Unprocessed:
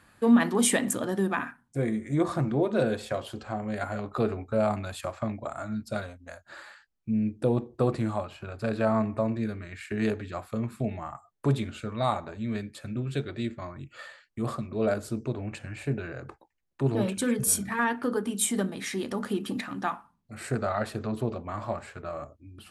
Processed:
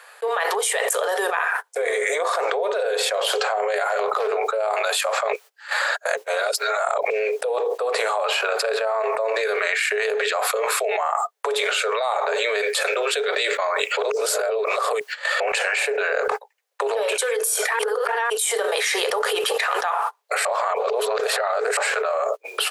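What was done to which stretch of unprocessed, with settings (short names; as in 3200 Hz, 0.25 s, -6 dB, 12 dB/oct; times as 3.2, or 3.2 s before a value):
3.87–4.47 overloaded stage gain 24 dB
5.33–7.1 reverse
13.97–15.4 reverse
17.79–18.3 reverse
20.45–21.77 reverse
whole clip: gate -48 dBFS, range -25 dB; Chebyshev high-pass 420 Hz, order 8; fast leveller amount 100%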